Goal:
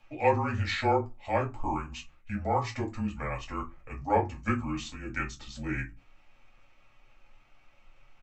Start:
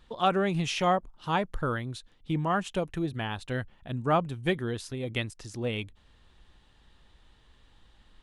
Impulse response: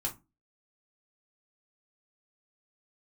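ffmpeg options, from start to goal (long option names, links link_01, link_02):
-filter_complex "[0:a]asetrate=31183,aresample=44100,atempo=1.41421,afreqshift=-24,lowshelf=frequency=460:gain=-9[link_01];[1:a]atrim=start_sample=2205[link_02];[link_01][link_02]afir=irnorm=-1:irlink=0"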